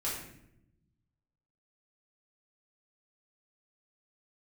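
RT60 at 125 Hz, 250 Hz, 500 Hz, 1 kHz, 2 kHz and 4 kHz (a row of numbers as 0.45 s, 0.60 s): 1.7 s, 1.4 s, 0.95 s, 0.65 s, 0.70 s, 0.55 s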